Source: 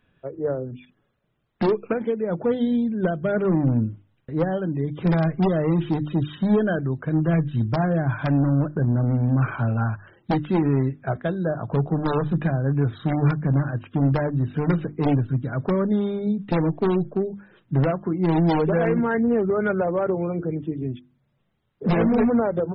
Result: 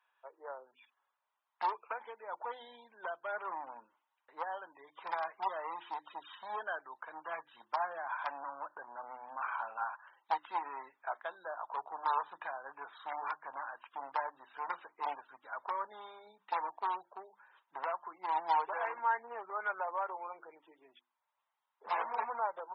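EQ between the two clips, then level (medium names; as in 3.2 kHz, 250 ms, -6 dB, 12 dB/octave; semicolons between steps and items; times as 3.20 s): ladder high-pass 860 Hz, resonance 70%; 0.0 dB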